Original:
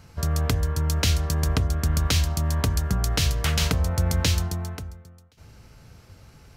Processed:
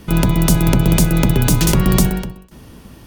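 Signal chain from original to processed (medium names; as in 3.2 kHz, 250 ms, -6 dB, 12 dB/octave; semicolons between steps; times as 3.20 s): octave divider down 2 oct, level -2 dB; wide varispeed 2.14×; trim +7.5 dB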